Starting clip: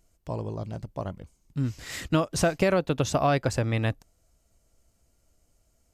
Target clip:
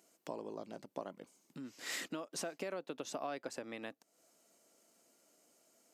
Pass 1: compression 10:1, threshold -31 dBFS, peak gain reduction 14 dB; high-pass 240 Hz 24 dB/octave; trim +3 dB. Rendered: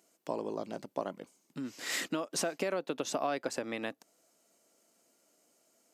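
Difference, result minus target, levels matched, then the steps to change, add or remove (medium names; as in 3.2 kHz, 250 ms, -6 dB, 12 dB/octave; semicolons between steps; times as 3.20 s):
compression: peak gain reduction -8 dB
change: compression 10:1, threshold -40 dBFS, peak gain reduction 22 dB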